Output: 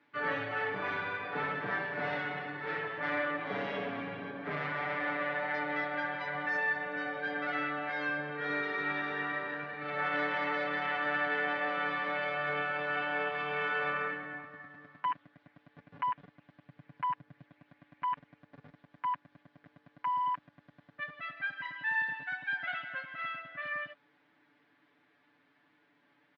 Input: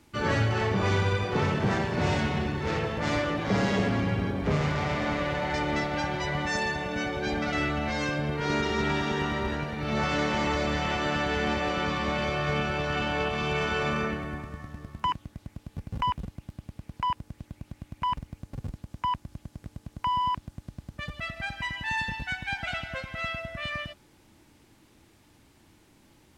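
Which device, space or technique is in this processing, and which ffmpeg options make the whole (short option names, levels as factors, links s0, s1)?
phone earpiece: -filter_complex "[0:a]highpass=350,equalizer=f=370:t=q:w=4:g=-8,equalizer=f=530:t=q:w=4:g=-3,equalizer=f=880:t=q:w=4:g=-4,equalizer=f=1700:t=q:w=4:g=6,equalizer=f=2800:t=q:w=4:g=-5,lowpass=f=3200:w=0.5412,lowpass=f=3200:w=1.3066,aecho=1:1:6.9:0.88,asettb=1/sr,asplit=3[s0][s1][s2];[s0]atrim=end=16.674[s3];[s1]atrim=start=16.67:end=17.44,asetpts=PTS-STARTPTS,afade=t=in:d=0.004:c=qsin,afade=t=out:st=0.766:d=0.004:c=qsin,equalizer=f=130:w=1.3:g=9[s4];[s2]atrim=start=17.436[s5];[s3][s4]acrossfade=d=0.004:c1=hsin:c2=qsin[s6];[s6][s5]acrossfade=d=0.004:c1=qsin:c2=hsin,volume=0.447"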